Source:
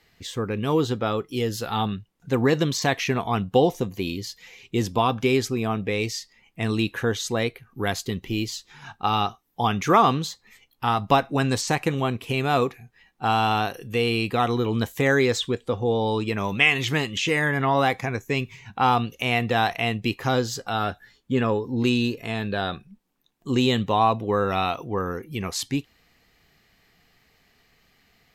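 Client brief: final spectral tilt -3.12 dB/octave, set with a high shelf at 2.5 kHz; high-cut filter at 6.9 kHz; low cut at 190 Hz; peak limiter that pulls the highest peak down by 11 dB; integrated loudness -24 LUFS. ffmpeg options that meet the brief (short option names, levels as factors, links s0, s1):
-af "highpass=190,lowpass=6900,highshelf=f=2500:g=9,alimiter=limit=0.335:level=0:latency=1"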